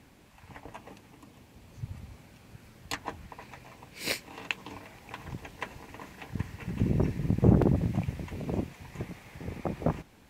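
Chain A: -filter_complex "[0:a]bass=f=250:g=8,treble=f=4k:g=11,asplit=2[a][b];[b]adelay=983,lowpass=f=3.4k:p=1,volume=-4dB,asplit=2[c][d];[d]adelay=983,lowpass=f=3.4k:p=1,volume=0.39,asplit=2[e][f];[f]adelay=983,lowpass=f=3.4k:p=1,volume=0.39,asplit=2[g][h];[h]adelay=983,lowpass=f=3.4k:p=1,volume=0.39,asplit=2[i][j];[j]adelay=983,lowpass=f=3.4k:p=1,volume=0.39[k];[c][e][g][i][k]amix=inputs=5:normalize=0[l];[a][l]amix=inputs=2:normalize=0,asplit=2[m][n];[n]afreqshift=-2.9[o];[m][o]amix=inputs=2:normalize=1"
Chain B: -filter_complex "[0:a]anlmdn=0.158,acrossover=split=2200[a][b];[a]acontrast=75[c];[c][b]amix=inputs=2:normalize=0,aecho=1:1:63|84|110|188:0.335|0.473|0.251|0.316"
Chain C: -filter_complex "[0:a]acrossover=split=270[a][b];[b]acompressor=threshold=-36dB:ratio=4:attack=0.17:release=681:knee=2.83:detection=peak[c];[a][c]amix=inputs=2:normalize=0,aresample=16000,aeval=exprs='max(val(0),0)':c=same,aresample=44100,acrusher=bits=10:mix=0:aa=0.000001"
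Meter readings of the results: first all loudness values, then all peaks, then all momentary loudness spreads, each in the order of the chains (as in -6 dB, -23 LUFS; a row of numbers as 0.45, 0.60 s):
-27.5, -24.0, -38.0 LUFS; -2.5, -3.0, -11.0 dBFS; 23, 23, 22 LU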